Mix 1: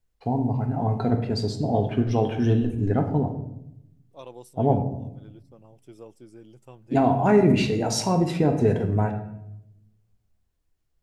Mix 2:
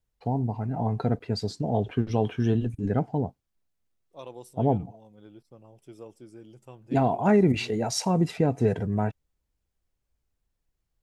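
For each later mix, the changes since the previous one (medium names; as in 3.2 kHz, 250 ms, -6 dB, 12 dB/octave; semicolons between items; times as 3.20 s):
reverb: off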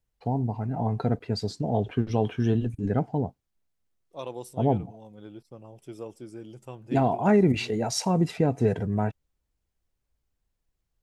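second voice +5.5 dB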